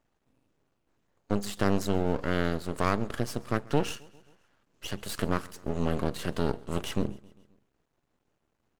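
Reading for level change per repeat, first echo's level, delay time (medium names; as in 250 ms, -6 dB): -4.5 dB, -24.0 dB, 133 ms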